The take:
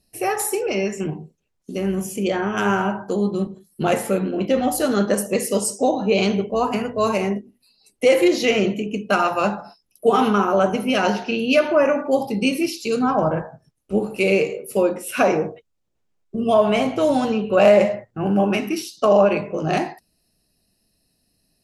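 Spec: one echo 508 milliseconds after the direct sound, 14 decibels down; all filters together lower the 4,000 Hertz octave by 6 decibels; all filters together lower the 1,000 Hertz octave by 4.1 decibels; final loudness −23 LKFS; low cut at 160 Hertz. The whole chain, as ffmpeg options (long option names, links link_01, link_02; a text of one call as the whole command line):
ffmpeg -i in.wav -af "highpass=160,equalizer=frequency=1000:width_type=o:gain=-5.5,equalizer=frequency=4000:width_type=o:gain=-9,aecho=1:1:508:0.2,volume=-1dB" out.wav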